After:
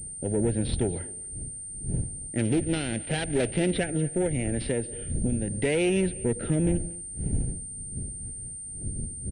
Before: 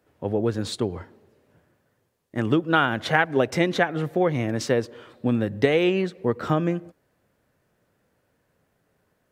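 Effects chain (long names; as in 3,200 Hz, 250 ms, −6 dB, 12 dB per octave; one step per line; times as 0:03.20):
0:02.39–0:03.71: gap after every zero crossing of 0.21 ms
wind on the microphone 120 Hz −35 dBFS
in parallel at −1 dB: brickwall limiter −13.5 dBFS, peak gain reduction 9 dB
0:04.26–0:05.48: on the sum: downward compressor 6 to 1, threshold −18 dBFS, peak gain reduction 7 dB
rotating-speaker cabinet horn 0.8 Hz
tube saturation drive 18 dB, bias 0.5
phaser with its sweep stopped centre 2,700 Hz, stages 4
on a send: single-tap delay 236 ms −21.5 dB
on the sum: switching amplifier with a slow clock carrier 8,900 Hz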